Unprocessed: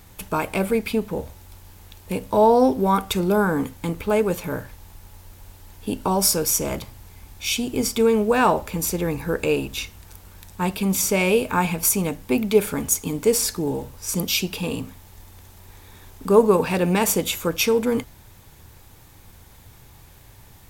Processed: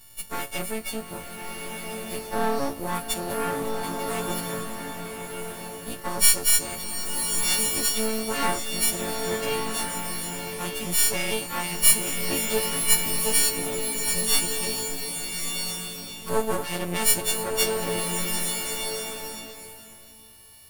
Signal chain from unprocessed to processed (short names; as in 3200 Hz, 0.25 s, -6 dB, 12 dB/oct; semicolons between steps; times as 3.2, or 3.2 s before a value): frequency quantiser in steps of 4 st; half-wave rectifier; bloom reverb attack 1.37 s, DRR 2 dB; gain -6.5 dB